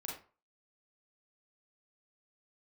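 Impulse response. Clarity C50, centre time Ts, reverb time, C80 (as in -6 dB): 3.5 dB, 39 ms, 0.40 s, 9.5 dB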